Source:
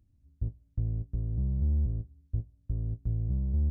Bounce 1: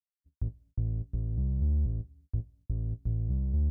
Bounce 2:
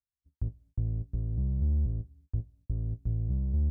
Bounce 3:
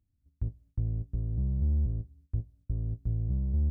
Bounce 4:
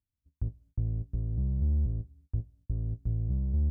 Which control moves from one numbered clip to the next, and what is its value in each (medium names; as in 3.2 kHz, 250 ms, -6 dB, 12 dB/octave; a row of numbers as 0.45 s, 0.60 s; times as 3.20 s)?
gate, range: -56 dB, -38 dB, -10 dB, -24 dB